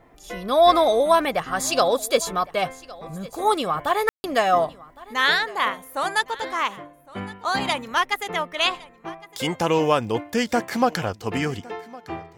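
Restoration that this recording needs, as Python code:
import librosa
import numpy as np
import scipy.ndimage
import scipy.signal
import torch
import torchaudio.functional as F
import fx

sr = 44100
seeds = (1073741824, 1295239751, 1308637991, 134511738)

y = fx.fix_ambience(x, sr, seeds[0], print_start_s=8.86, print_end_s=9.36, start_s=4.09, end_s=4.24)
y = fx.fix_echo_inverse(y, sr, delay_ms=1110, level_db=-21.0)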